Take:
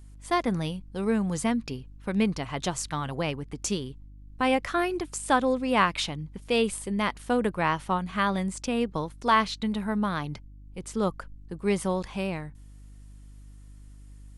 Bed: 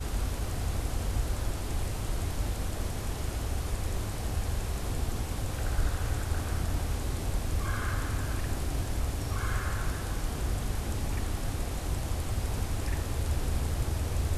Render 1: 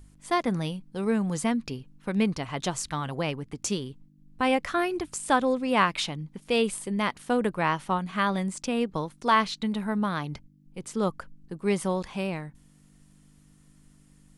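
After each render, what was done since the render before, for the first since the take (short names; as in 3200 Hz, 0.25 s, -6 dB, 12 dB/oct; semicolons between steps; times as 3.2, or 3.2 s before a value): de-hum 50 Hz, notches 2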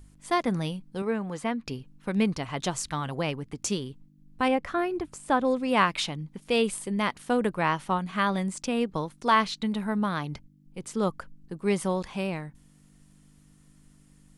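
1.02–1.67 tone controls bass -9 dB, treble -12 dB; 4.48–5.45 high shelf 2200 Hz -10.5 dB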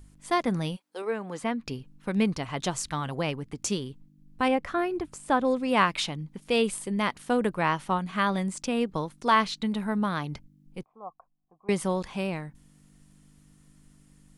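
0.75–1.39 HPF 630 Hz -> 160 Hz 24 dB/oct; 10.83–11.69 vocal tract filter a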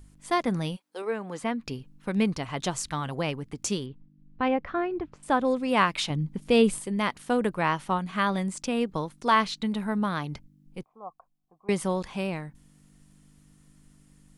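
3.86–5.23 air absorption 270 m; 6.1–6.8 low shelf 410 Hz +9 dB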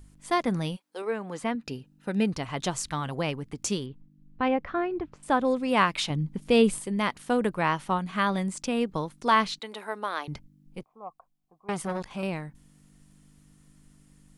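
1.55–2.33 notch comb 1100 Hz; 9.59–10.28 HPF 370 Hz 24 dB/oct; 10.79–12.23 core saturation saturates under 940 Hz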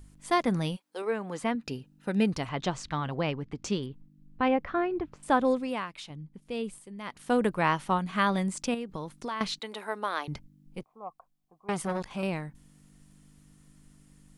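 2.49–3.83 air absorption 120 m; 5.51–7.34 dip -14 dB, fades 0.30 s linear; 8.74–9.41 compressor 5:1, threshold -32 dBFS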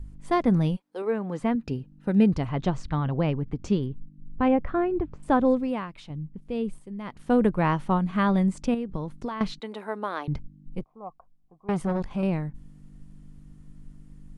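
tilt -3 dB/oct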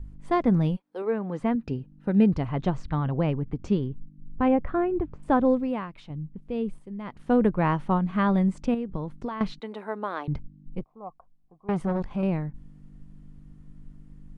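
high shelf 4600 Hz -11 dB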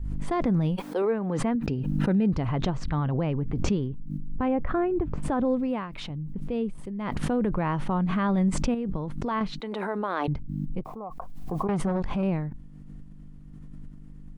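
limiter -17 dBFS, peak gain reduction 7 dB; backwards sustainer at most 22 dB/s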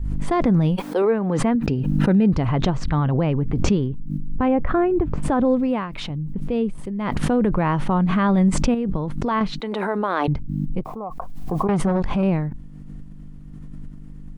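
gain +6.5 dB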